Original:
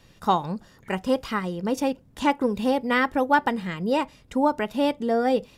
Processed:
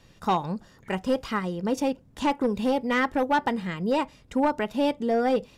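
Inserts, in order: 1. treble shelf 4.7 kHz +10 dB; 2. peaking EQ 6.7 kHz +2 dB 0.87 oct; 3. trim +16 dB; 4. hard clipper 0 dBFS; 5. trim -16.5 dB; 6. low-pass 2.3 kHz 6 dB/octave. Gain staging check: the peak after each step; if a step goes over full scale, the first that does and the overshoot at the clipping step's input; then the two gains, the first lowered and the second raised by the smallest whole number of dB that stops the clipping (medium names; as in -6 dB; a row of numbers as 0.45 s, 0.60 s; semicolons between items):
-7.0 dBFS, -7.0 dBFS, +9.0 dBFS, 0.0 dBFS, -16.5 dBFS, -16.5 dBFS; step 3, 9.0 dB; step 3 +7 dB, step 5 -7.5 dB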